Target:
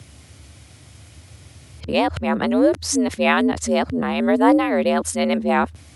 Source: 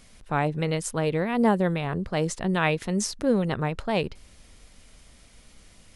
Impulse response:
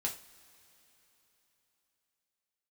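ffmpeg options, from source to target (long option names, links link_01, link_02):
-af "areverse,afreqshift=67,volume=6.5dB"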